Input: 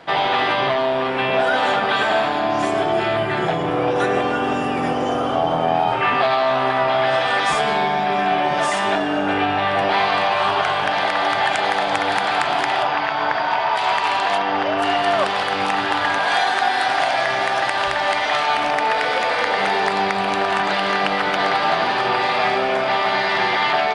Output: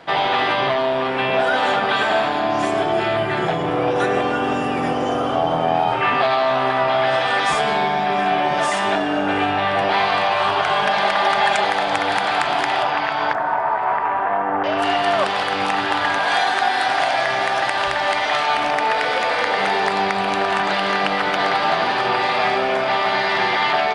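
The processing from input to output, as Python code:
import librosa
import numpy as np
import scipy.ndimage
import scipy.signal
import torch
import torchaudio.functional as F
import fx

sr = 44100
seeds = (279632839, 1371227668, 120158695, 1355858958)

y = fx.comb(x, sr, ms=4.9, depth=0.67, at=(10.7, 11.64))
y = fx.lowpass(y, sr, hz=1700.0, slope=24, at=(13.33, 14.64))
y = fx.echo_feedback(y, sr, ms=709, feedback_pct=32, wet_db=-23)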